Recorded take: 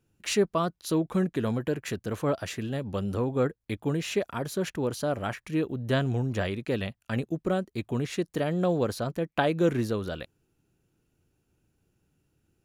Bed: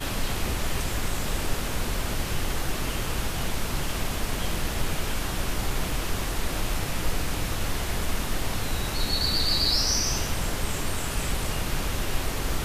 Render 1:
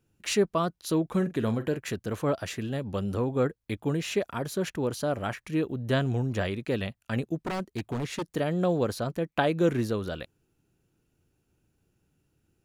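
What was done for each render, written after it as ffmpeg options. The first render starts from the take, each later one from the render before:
ffmpeg -i in.wav -filter_complex "[0:a]asettb=1/sr,asplit=3[link_01][link_02][link_03];[link_01]atrim=end=1.094[link_04];[link_02]atrim=start=1.09:end=1.77,asetpts=PTS-STARTPTS,afade=type=in:duration=0.004:curve=qsin,afade=type=out:start_time=0.676:duration=0.004:curve=qsin,asplit=2[link_05][link_06];[link_06]adelay=45,volume=-13.5dB[link_07];[link_05][link_07]amix=inputs=2:normalize=0,atrim=end_sample=29988[link_08];[link_03]atrim=start=1.766[link_09];[link_04][link_08]acrossfade=duration=0.004:curve1=hsin:curve2=qsin[link_10];[link_10][link_09]acrossfade=duration=0.004:curve1=qsin:curve2=hsin,asettb=1/sr,asplit=3[link_11][link_12][link_13];[link_11]atrim=end=7.424[link_14];[link_12]atrim=start=7.42:end=8.25,asetpts=PTS-STARTPTS,afade=type=in:duration=0.004:curve=qsin,afade=type=out:start_time=0.826:duration=0.004:curve=qsin,aeval=exprs='0.0562*(abs(mod(val(0)/0.0562+3,4)-2)-1)':channel_layout=same[link_15];[link_13]atrim=start=8.246[link_16];[link_14][link_15]acrossfade=duration=0.004:curve1=hsin:curve2=qsin[link_17];[link_17][link_16]acrossfade=duration=0.004:curve1=qsin:curve2=hsin" out.wav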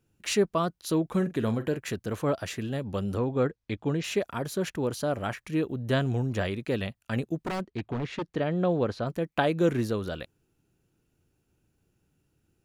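ffmpeg -i in.wav -filter_complex "[0:a]asettb=1/sr,asplit=3[link_01][link_02][link_03];[link_01]atrim=end=3.184[link_04];[link_02]atrim=start=3.18:end=4.04,asetpts=PTS-STARTPTS,afade=type=in:duration=0.004:curve=qsin,afade=type=out:start_time=0.856:duration=0.004:curve=qsin,lowpass=frequency=6500:width=0.5412,lowpass=frequency=6500:width=1.3066[link_05];[link_03]atrim=start=4.036[link_06];[link_04][link_05]acrossfade=duration=0.004:curve1=hsin:curve2=qsin[link_07];[link_07][link_06]acrossfade=duration=0.004:curve1=qsin:curve2=hsin,asettb=1/sr,asplit=3[link_08][link_09][link_10];[link_08]atrim=end=7.614[link_11];[link_09]atrim=start=7.61:end=9.07,asetpts=PTS-STARTPTS,afade=type=in:duration=0.004:curve=qsin,afade=type=out:start_time=1.456:duration=0.004:curve=qsin,lowpass=3600[link_12];[link_10]atrim=start=9.066[link_13];[link_11][link_12]acrossfade=duration=0.004:curve1=hsin:curve2=qsin[link_14];[link_14][link_13]acrossfade=duration=0.004:curve1=qsin:curve2=hsin" out.wav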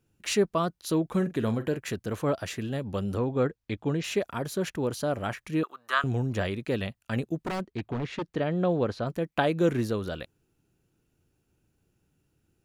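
ffmpeg -i in.wav -filter_complex "[0:a]asettb=1/sr,asplit=3[link_01][link_02][link_03];[link_01]atrim=end=5.634[link_04];[link_02]atrim=start=5.63:end=6.04,asetpts=PTS-STARTPTS,afade=type=in:duration=0.004:curve=qsin,afade=type=out:start_time=0.406:duration=0.004:curve=qsin,highpass=frequency=1200:width_type=q:width=8[link_05];[link_03]atrim=start=6.036[link_06];[link_04][link_05]acrossfade=duration=0.004:curve1=hsin:curve2=qsin[link_07];[link_07][link_06]acrossfade=duration=0.004:curve1=qsin:curve2=hsin" out.wav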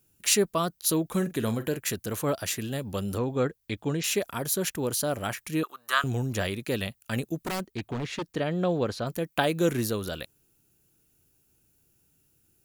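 ffmpeg -i in.wav -af "aemphasis=mode=production:type=75fm" out.wav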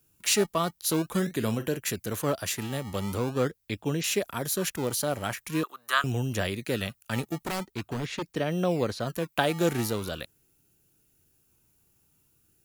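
ffmpeg -i in.wav -filter_complex "[0:a]acrossover=split=280|5500[link_01][link_02][link_03];[link_01]acrusher=samples=29:mix=1:aa=0.000001:lfo=1:lforange=29:lforate=0.44[link_04];[link_03]asoftclip=type=tanh:threshold=-22.5dB[link_05];[link_04][link_02][link_05]amix=inputs=3:normalize=0" out.wav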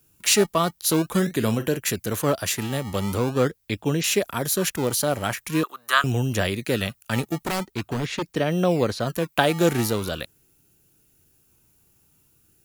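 ffmpeg -i in.wav -af "volume=5.5dB" out.wav

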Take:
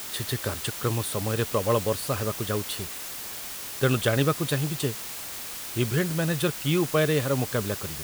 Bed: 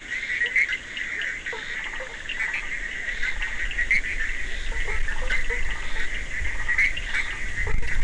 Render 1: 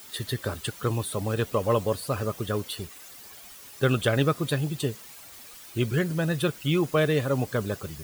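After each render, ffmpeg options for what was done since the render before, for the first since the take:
ffmpeg -i in.wav -af "afftdn=noise_reduction=12:noise_floor=-37" out.wav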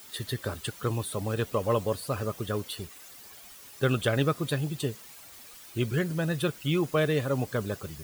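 ffmpeg -i in.wav -af "volume=-2.5dB" out.wav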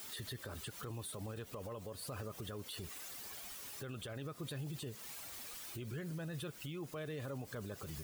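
ffmpeg -i in.wav -af "acompressor=threshold=-34dB:ratio=12,alimiter=level_in=12dB:limit=-24dB:level=0:latency=1:release=45,volume=-12dB" out.wav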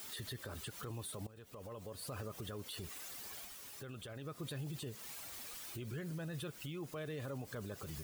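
ffmpeg -i in.wav -filter_complex "[0:a]asplit=4[link_01][link_02][link_03][link_04];[link_01]atrim=end=1.27,asetpts=PTS-STARTPTS,afade=type=out:start_time=1.266:duration=0.004:curve=hsin:silence=0.141254[link_05];[link_02]atrim=start=1.27:end=3.452,asetpts=PTS-STARTPTS,afade=type=in:duration=0.95:curve=qsin:silence=0.141254[link_06];[link_03]atrim=start=3.448:end=4.272,asetpts=PTS-STARTPTS,volume=-3dB[link_07];[link_04]atrim=start=4.268[link_08];[link_05][link_06]concat=n=2:v=0:a=1[link_09];[link_09][link_07]acrossfade=duration=0.004:curve1=hsin:curve2=hsin[link_10];[link_10][link_08]acrossfade=duration=0.004:curve1=hsin:curve2=hsin" out.wav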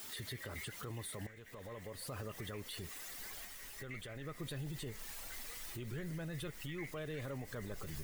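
ffmpeg -i in.wav -i bed.wav -filter_complex "[1:a]volume=-29.5dB[link_01];[0:a][link_01]amix=inputs=2:normalize=0" out.wav

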